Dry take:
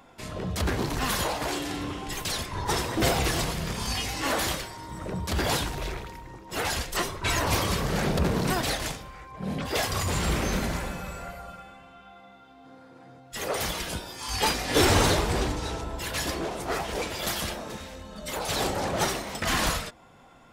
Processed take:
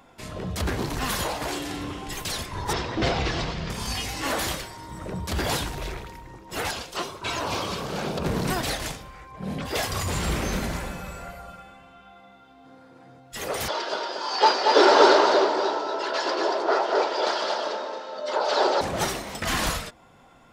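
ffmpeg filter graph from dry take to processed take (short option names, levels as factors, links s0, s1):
-filter_complex "[0:a]asettb=1/sr,asplit=3[s0][s1][s2];[s0]atrim=end=2.734[s3];[s1]atrim=start=2.73:end=3.7,asetpts=PTS-STARTPTS,afade=t=in:d=0.004:c=qsin,afade=t=out:st=0.966:d=0.004:c=qsin,lowpass=f=5300:w=0.5412,lowpass=f=5300:w=1.3066,asoftclip=type=hard:threshold=0.211[s4];[s2]atrim=start=3.696[s5];[s3][s4]acrossfade=d=0.004:c1=hsin:c2=qsin[s6];[s6][s5]acrossfade=d=0.004:c1=qsin:c2=hsin,asettb=1/sr,asplit=3[s7][s8][s9];[s7]atrim=end=6.714[s10];[s8]atrim=start=6.71:end=8.26,asetpts=PTS-STARTPTS,afade=t=in:d=0.004:c=qsin,afade=t=out:st=1.546:d=0.004:c=qsin,acrossover=split=6000[s11][s12];[s12]acompressor=threshold=0.00355:ratio=4:attack=1:release=60[s13];[s11][s13]amix=inputs=2:normalize=0,highpass=f=260:p=1,equalizer=f=1900:w=3.8:g=-9[s14];[s9]atrim=start=8.256[s15];[s10][s14]acrossfade=d=0.004:c1=hsin:c2=qsin[s16];[s16][s15]acrossfade=d=0.004:c1=qsin:c2=hsin,asettb=1/sr,asplit=3[s17][s18][s19];[s17]atrim=end=13.684[s20];[s18]atrim=start=13.68:end=18.81,asetpts=PTS-STARTPTS,afade=t=in:d=0.004:c=qsin,afade=t=out:st=5.126:d=0.004:c=qsin,highpass=f=310:w=0.5412,highpass=f=310:w=1.3066,equalizer=f=390:t=q:w=4:g=8,equalizer=f=600:t=q:w=4:g=10,equalizer=f=920:t=q:w=4:g=10,equalizer=f=1400:t=q:w=4:g=8,equalizer=f=2300:t=q:w=4:g=-5,equalizer=f=4700:t=q:w=4:g=6,lowpass=f=5400:w=0.5412,lowpass=f=5400:w=1.3066,aecho=1:1:231:0.631,atrim=end_sample=226233[s21];[s19]atrim=start=18.806[s22];[s20][s21]acrossfade=d=0.004:c1=hsin:c2=qsin[s23];[s23][s22]acrossfade=d=0.004:c1=qsin:c2=hsin"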